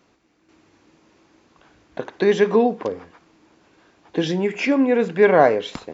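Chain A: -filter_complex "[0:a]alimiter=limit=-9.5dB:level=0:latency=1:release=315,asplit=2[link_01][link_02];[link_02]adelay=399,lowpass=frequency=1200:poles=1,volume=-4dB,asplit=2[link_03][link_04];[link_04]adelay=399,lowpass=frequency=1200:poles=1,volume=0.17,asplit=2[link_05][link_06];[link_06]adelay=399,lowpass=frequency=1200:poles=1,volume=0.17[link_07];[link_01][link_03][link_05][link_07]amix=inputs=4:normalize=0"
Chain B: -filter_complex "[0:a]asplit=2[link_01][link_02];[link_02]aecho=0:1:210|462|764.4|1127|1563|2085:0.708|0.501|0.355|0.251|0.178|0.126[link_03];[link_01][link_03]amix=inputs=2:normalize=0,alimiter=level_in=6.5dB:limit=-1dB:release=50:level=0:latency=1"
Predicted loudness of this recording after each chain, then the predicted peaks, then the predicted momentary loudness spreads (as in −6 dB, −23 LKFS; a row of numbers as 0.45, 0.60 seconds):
−20.5, −12.5 LKFS; −5.5, −1.0 dBFS; 17, 12 LU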